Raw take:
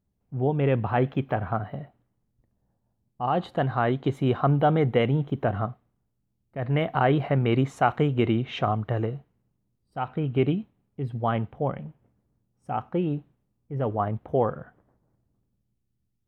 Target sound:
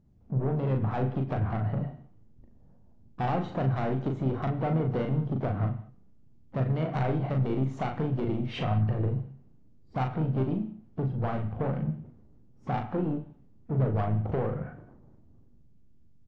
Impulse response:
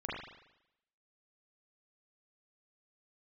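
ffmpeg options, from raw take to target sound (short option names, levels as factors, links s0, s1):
-filter_complex "[0:a]tiltshelf=f=970:g=6.5,acompressor=threshold=0.0355:ratio=20,aresample=16000,asoftclip=type=tanh:threshold=0.0282,aresample=44100,asplit=2[s0][s1];[s1]adelay=38,volume=0.596[s2];[s0][s2]amix=inputs=2:normalize=0,asplit=2[s3][s4];[1:a]atrim=start_sample=2205,afade=t=out:st=0.25:d=0.01,atrim=end_sample=11466[s5];[s4][s5]afir=irnorm=-1:irlink=0,volume=0.299[s6];[s3][s6]amix=inputs=2:normalize=0,asplit=3[s7][s8][s9];[s8]asetrate=37084,aresample=44100,atempo=1.18921,volume=0.178[s10];[s9]asetrate=66075,aresample=44100,atempo=0.66742,volume=0.178[s11];[s7][s10][s11]amix=inputs=3:normalize=0,volume=1.68" -ar 24000 -c:a aac -b:a 64k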